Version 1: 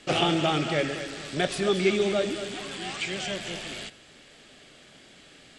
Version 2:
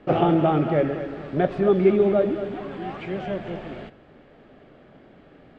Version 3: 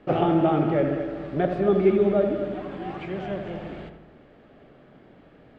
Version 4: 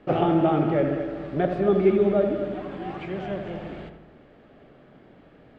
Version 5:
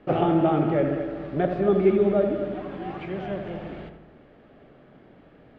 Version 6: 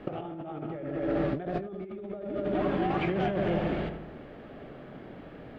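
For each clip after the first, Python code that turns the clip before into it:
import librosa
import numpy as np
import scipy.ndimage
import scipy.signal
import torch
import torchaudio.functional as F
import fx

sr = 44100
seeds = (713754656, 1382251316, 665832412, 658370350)

y1 = scipy.signal.sosfilt(scipy.signal.butter(2, 1000.0, 'lowpass', fs=sr, output='sos'), x)
y1 = y1 * 10.0 ** (6.5 / 20.0)
y2 = fx.echo_filtered(y1, sr, ms=79, feedback_pct=63, hz=1800.0, wet_db=-7.0)
y2 = y2 * 10.0 ** (-2.5 / 20.0)
y3 = y2
y4 = fx.air_absorb(y3, sr, metres=76.0)
y5 = fx.over_compress(y4, sr, threshold_db=-33.0, ratio=-1.0)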